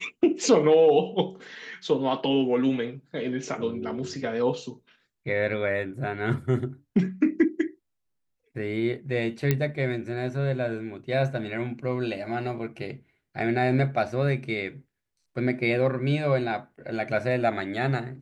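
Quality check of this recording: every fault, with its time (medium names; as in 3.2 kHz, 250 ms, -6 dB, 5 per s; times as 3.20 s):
9.51 s: pop -9 dBFS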